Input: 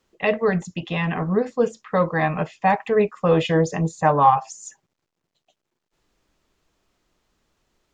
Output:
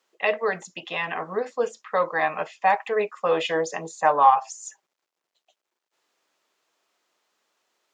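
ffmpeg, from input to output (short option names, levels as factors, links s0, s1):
-af "highpass=540"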